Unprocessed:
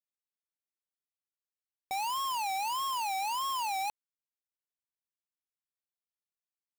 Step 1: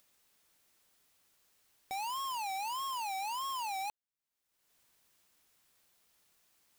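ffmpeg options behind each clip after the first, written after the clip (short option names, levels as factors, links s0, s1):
-af "acompressor=mode=upward:threshold=0.00708:ratio=2.5,volume=0.596"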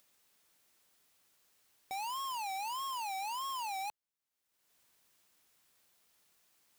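-af "lowshelf=f=70:g=-6.5,asoftclip=type=tanh:threshold=0.0211"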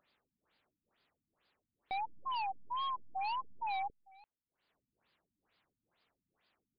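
-filter_complex "[0:a]asplit=2[s0][s1];[s1]acrusher=bits=4:dc=4:mix=0:aa=0.000001,volume=0.335[s2];[s0][s2]amix=inputs=2:normalize=0,aecho=1:1:340:0.0668,afftfilt=real='re*lt(b*sr/1024,270*pow(5100/270,0.5+0.5*sin(2*PI*2.2*pts/sr)))':imag='im*lt(b*sr/1024,270*pow(5100/270,0.5+0.5*sin(2*PI*2.2*pts/sr)))':win_size=1024:overlap=0.75,volume=1.12"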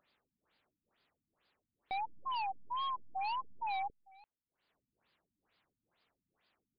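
-af anull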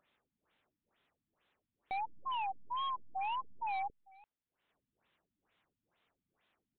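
-af "aresample=8000,aresample=44100"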